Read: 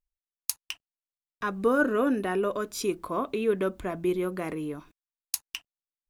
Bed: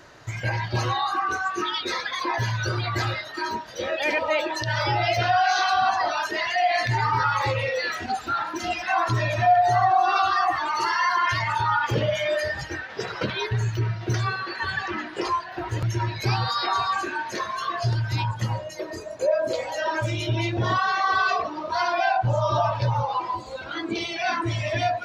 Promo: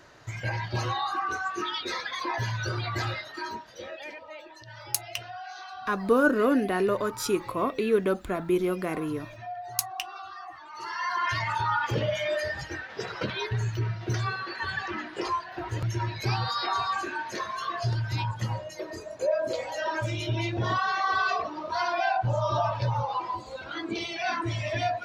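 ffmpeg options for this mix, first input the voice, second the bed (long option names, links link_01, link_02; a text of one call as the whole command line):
ffmpeg -i stem1.wav -i stem2.wav -filter_complex "[0:a]adelay=4450,volume=2dB[link_01];[1:a]volume=11.5dB,afade=type=out:start_time=3.19:duration=0.99:silence=0.16788,afade=type=in:start_time=10.69:duration=0.66:silence=0.158489[link_02];[link_01][link_02]amix=inputs=2:normalize=0" out.wav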